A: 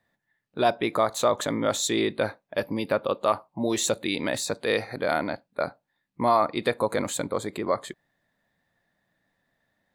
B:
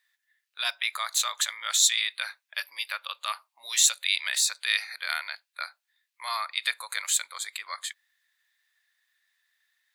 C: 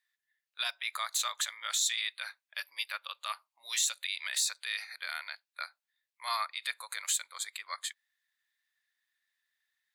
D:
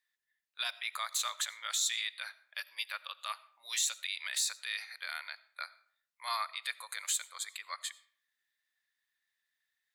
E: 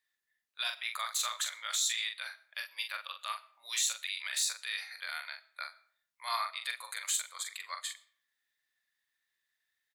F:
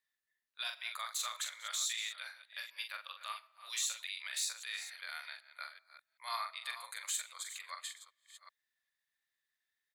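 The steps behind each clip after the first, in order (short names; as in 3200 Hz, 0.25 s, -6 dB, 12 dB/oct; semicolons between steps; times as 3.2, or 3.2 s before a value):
Bessel high-pass 2400 Hz, order 4; gain +8 dB
limiter -19 dBFS, peak gain reduction 11.5 dB; upward expander 1.5:1, over -46 dBFS
reverb RT60 0.55 s, pre-delay 45 ms, DRR 19 dB; gain -2 dB
doubler 43 ms -6 dB
reverse delay 0.386 s, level -12.5 dB; gain -5 dB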